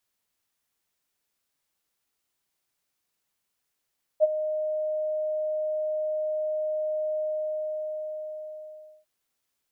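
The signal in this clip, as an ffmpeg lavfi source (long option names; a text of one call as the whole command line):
ffmpeg -f lavfi -i "aevalsrc='0.224*sin(2*PI*617*t)':duration=4.85:sample_rate=44100,afade=type=in:duration=0.035,afade=type=out:start_time=0.035:duration=0.028:silence=0.237,afade=type=out:start_time=2.98:duration=1.87" out.wav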